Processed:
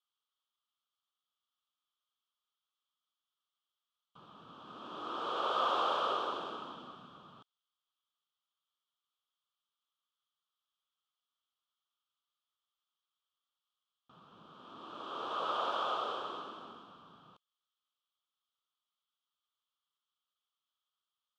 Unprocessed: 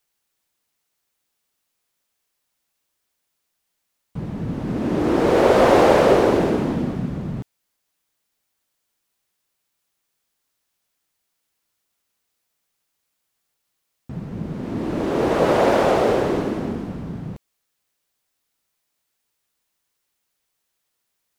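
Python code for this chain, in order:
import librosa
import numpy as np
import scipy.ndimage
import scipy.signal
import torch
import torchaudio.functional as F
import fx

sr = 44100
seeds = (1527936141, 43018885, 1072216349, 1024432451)

y = fx.double_bandpass(x, sr, hz=2000.0, octaves=1.4)
y = F.gain(torch.from_numpy(y), -3.0).numpy()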